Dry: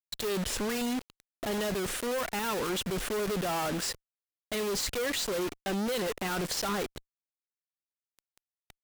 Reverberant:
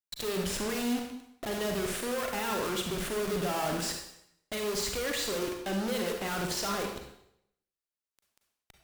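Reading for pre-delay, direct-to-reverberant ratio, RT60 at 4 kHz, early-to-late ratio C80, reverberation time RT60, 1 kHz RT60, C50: 34 ms, 2.5 dB, 0.70 s, 7.0 dB, 0.75 s, 0.75 s, 4.0 dB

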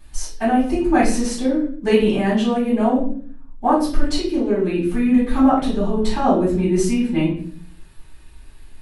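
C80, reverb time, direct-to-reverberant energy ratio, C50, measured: 9.5 dB, 0.50 s, -11.5 dB, 4.5 dB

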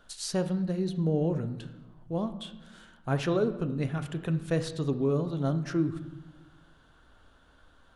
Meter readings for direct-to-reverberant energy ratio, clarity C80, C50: 9.0 dB, 14.0 dB, 12.0 dB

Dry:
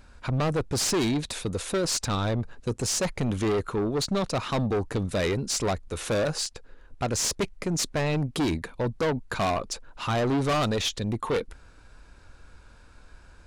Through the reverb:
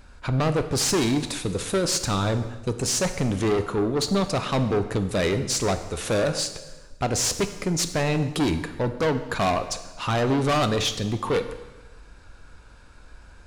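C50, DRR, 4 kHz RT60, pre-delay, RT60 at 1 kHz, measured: 11.0 dB, 8.5 dB, 1.1 s, 5 ms, 1.2 s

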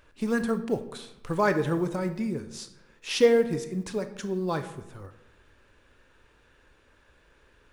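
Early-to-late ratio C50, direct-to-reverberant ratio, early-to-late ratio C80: 12.0 dB, 9.0 dB, 14.5 dB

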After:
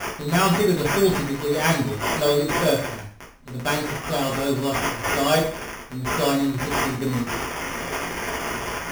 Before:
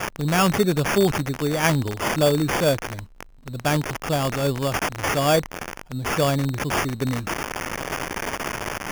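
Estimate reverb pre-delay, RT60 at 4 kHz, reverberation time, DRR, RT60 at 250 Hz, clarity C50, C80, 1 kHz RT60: 5 ms, 0.45 s, 0.50 s, -5.0 dB, 0.45 s, 6.5 dB, 11.0 dB, 0.45 s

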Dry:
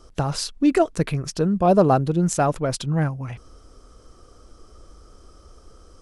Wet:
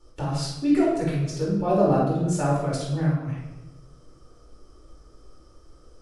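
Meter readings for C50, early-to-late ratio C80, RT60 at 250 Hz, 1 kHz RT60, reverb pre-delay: 0.5 dB, 4.0 dB, 1.4 s, 0.90 s, 3 ms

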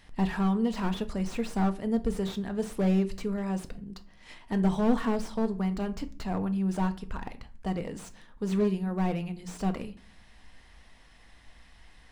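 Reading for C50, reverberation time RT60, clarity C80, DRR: 17.5 dB, 0.45 s, 21.5 dB, 8.5 dB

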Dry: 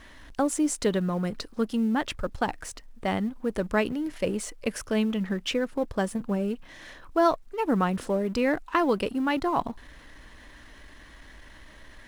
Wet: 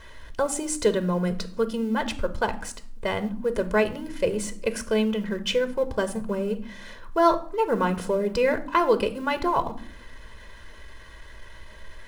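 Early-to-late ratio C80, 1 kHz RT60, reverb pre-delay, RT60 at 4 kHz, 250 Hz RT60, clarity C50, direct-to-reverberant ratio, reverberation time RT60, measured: 19.0 dB, 0.50 s, 4 ms, 0.40 s, 0.95 s, 15.0 dB, 10.0 dB, 0.60 s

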